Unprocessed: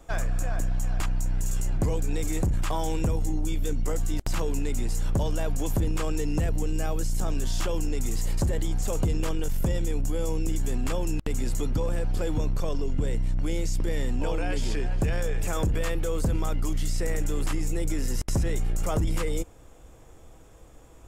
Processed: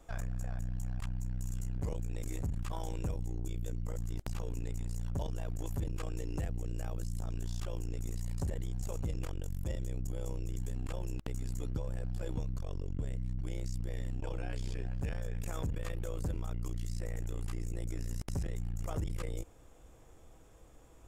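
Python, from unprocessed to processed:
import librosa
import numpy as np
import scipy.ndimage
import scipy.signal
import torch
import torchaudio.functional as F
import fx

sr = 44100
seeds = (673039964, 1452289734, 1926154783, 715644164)

y = fx.transformer_sat(x, sr, knee_hz=150.0)
y = F.gain(torch.from_numpy(y), -7.0).numpy()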